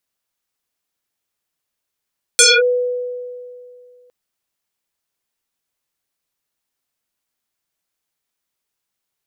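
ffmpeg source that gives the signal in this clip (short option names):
-f lavfi -i "aevalsrc='0.531*pow(10,-3*t/2.41)*sin(2*PI*494*t+9.8*clip(1-t/0.23,0,1)*sin(2*PI*1.95*494*t))':d=1.71:s=44100"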